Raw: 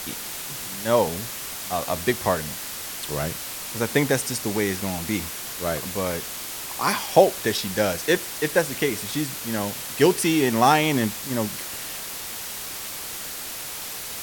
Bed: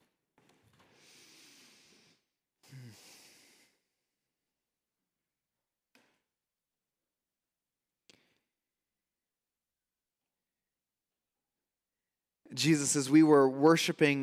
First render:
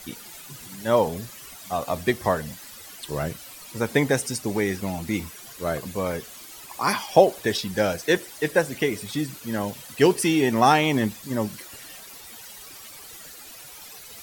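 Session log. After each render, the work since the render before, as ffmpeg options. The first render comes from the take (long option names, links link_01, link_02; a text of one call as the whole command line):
ffmpeg -i in.wav -af "afftdn=noise_reduction=13:noise_floor=-34" out.wav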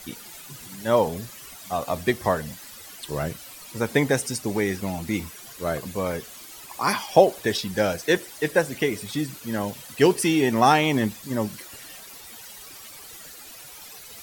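ffmpeg -i in.wav -af anull out.wav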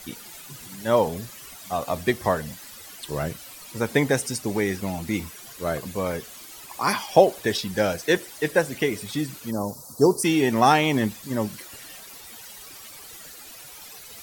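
ffmpeg -i in.wav -filter_complex "[0:a]asplit=3[link_01][link_02][link_03];[link_01]afade=type=out:start_time=9.5:duration=0.02[link_04];[link_02]asuperstop=centerf=2400:order=8:qfactor=0.69,afade=type=in:start_time=9.5:duration=0.02,afade=type=out:start_time=10.23:duration=0.02[link_05];[link_03]afade=type=in:start_time=10.23:duration=0.02[link_06];[link_04][link_05][link_06]amix=inputs=3:normalize=0" out.wav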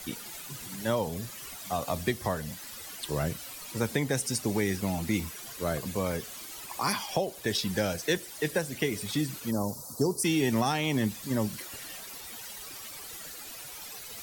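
ffmpeg -i in.wav -filter_complex "[0:a]alimiter=limit=-10.5dB:level=0:latency=1:release=491,acrossover=split=210|3000[link_01][link_02][link_03];[link_02]acompressor=threshold=-32dB:ratio=2[link_04];[link_01][link_04][link_03]amix=inputs=3:normalize=0" out.wav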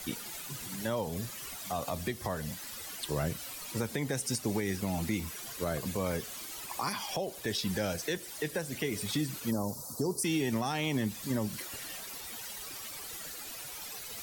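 ffmpeg -i in.wav -af "alimiter=limit=-21.5dB:level=0:latency=1:release=174" out.wav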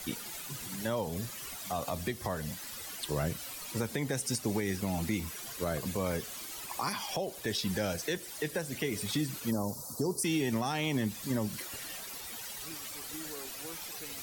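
ffmpeg -i in.wav -i bed.wav -filter_complex "[1:a]volume=-24dB[link_01];[0:a][link_01]amix=inputs=2:normalize=0" out.wav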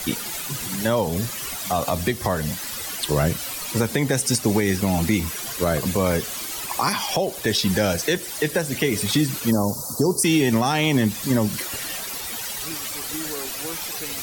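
ffmpeg -i in.wav -af "volume=12dB" out.wav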